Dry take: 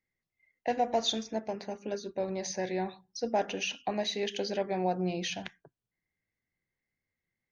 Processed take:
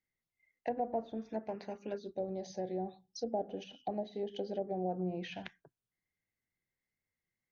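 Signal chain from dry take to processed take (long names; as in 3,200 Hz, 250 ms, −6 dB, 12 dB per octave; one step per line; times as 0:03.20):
treble cut that deepens with the level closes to 710 Hz, closed at −26.5 dBFS
gain on a spectral selection 0:01.98–0:04.89, 840–2,900 Hz −12 dB
level −4.5 dB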